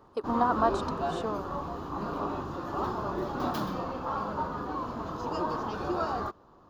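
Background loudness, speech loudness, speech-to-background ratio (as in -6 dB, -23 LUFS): -33.5 LUFS, -31.0 LUFS, 2.5 dB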